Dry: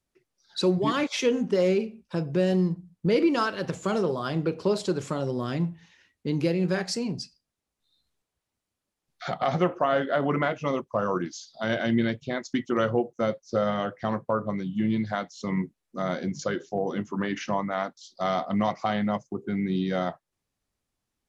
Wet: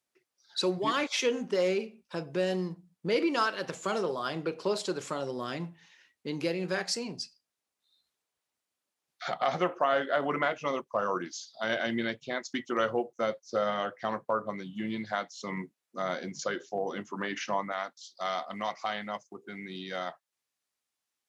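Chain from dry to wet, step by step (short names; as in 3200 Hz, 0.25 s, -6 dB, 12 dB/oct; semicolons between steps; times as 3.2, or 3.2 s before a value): HPF 620 Hz 6 dB/oct, from 17.72 s 1400 Hz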